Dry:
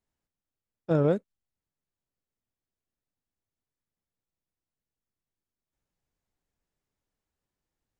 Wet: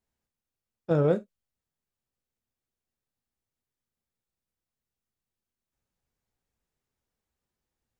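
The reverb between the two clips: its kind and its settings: non-linear reverb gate 90 ms falling, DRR 9 dB

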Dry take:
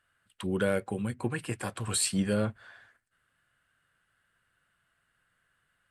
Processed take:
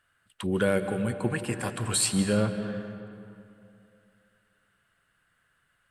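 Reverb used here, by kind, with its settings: digital reverb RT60 2.7 s, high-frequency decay 0.6×, pre-delay 0.115 s, DRR 8.5 dB; gain +3 dB

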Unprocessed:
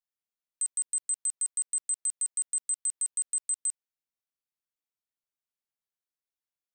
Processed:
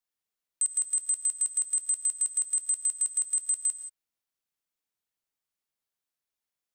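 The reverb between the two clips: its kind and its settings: non-linear reverb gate 0.2 s rising, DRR 9 dB; gain +3.5 dB

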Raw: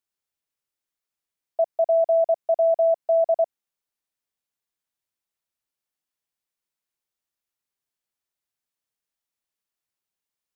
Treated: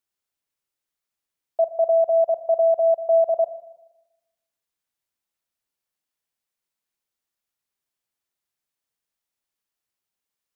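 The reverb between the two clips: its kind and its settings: spring tank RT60 1 s, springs 39/47 ms, chirp 45 ms, DRR 11.5 dB; gain +1.5 dB

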